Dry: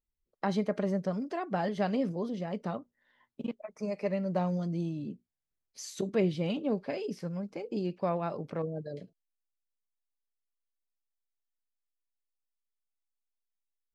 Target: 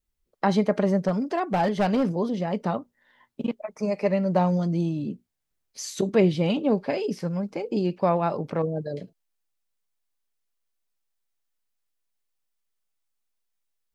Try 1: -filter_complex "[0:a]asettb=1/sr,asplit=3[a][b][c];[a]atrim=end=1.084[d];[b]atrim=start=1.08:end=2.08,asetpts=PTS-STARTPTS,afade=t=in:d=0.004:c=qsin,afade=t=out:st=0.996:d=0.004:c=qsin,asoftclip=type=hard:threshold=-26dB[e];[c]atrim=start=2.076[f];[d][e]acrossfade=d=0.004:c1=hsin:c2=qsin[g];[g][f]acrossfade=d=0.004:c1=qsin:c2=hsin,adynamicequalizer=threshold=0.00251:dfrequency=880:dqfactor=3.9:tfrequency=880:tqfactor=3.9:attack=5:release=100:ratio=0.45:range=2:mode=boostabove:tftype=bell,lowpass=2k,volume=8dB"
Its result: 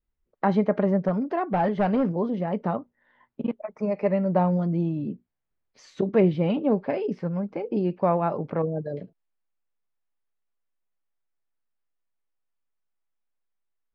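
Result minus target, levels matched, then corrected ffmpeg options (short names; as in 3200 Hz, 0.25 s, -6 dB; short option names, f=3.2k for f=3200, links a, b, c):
2000 Hz band -2.5 dB
-filter_complex "[0:a]asettb=1/sr,asplit=3[a][b][c];[a]atrim=end=1.084[d];[b]atrim=start=1.08:end=2.08,asetpts=PTS-STARTPTS,afade=t=in:d=0.004:c=qsin,afade=t=out:st=0.996:d=0.004:c=qsin,asoftclip=type=hard:threshold=-26dB[e];[c]atrim=start=2.076[f];[d][e]acrossfade=d=0.004:c1=hsin:c2=qsin[g];[g][f]acrossfade=d=0.004:c1=qsin:c2=hsin,adynamicequalizer=threshold=0.00251:dfrequency=880:dqfactor=3.9:tfrequency=880:tqfactor=3.9:attack=5:release=100:ratio=0.45:range=2:mode=boostabove:tftype=bell,volume=8dB"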